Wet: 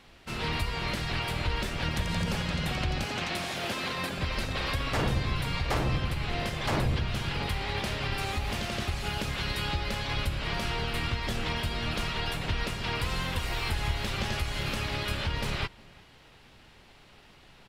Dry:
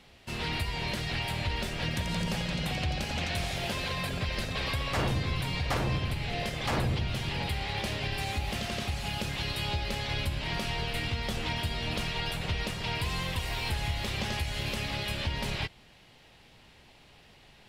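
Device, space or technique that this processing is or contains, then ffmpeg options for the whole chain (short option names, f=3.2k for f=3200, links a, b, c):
octave pedal: -filter_complex "[0:a]asettb=1/sr,asplit=3[a][b][c];[a]atrim=end=3.064[d];[b]atrim=start=3.06:end=4.18,asetpts=PTS-STARTPTS,afade=t=in:d=0.004:c=qsin,afade=t=out:st=1.116:d=0.004:c=qsin,highpass=f=160:w=0.5412,highpass=f=160:w=1.3066[e];[c]atrim=start=4.176[f];[d][e]acrossfade=d=0.004:c1=hsin:c2=qsin[g];[g][f]acrossfade=d=0.004:c1=qsin:c2=hsin,asplit=2[h][i];[i]adelay=365,lowpass=f=2.1k:p=1,volume=-23.5dB,asplit=2[j][k];[k]adelay=365,lowpass=f=2.1k:p=1,volume=0.27[l];[h][j][l]amix=inputs=3:normalize=0,asplit=2[m][n];[n]asetrate=22050,aresample=44100,atempo=2,volume=-4dB[o];[m][o]amix=inputs=2:normalize=0"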